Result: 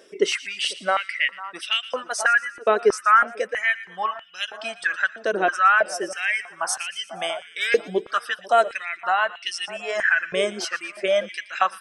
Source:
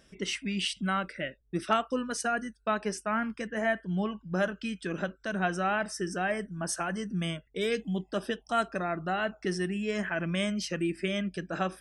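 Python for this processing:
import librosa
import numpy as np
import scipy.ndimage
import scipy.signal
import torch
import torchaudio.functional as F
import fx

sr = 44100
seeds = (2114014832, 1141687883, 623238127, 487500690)

p1 = fx.dereverb_blind(x, sr, rt60_s=0.84)
p2 = fx.rider(p1, sr, range_db=10, speed_s=0.5)
p3 = p1 + F.gain(torch.from_numpy(p2), 1.5).numpy()
p4 = fx.echo_split(p3, sr, split_hz=1500.0, low_ms=497, high_ms=117, feedback_pct=52, wet_db=-16)
y = fx.filter_held_highpass(p4, sr, hz=3.1, low_hz=420.0, high_hz=2900.0)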